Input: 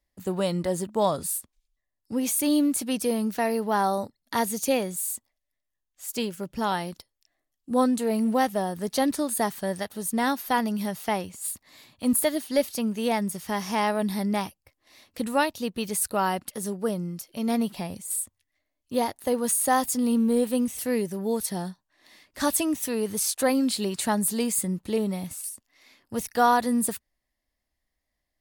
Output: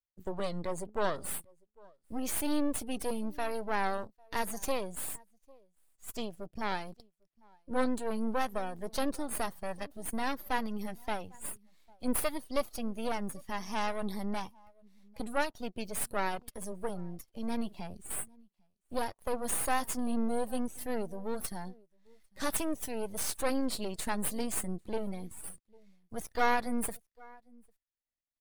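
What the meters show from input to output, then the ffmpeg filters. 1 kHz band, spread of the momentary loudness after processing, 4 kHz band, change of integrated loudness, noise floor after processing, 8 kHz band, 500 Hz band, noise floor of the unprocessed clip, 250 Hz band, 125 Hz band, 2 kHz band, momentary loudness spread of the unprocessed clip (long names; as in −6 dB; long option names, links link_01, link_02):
−8.5 dB, 11 LU, −8.5 dB, −9.0 dB, −82 dBFS, −10.0 dB, −9.0 dB, −82 dBFS, −10.5 dB, −10.0 dB, −5.5 dB, 9 LU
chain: -af "aeval=exprs='max(val(0),0)':channel_layout=same,aecho=1:1:799:0.0631,afftdn=noise_reduction=14:noise_floor=-46,volume=-3.5dB"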